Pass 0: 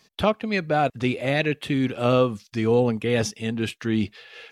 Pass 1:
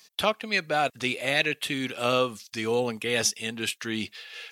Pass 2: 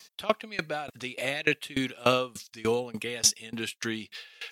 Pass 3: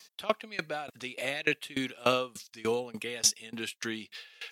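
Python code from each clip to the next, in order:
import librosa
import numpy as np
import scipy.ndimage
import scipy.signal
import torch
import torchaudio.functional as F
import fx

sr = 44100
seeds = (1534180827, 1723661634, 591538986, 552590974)

y1 = fx.tilt_eq(x, sr, slope=3.5)
y1 = y1 * librosa.db_to_amplitude(-2.0)
y2 = fx.tremolo_decay(y1, sr, direction='decaying', hz=3.4, depth_db=23)
y2 = y2 * librosa.db_to_amplitude(5.5)
y3 = fx.highpass(y2, sr, hz=150.0, slope=6)
y3 = y3 * librosa.db_to_amplitude(-2.5)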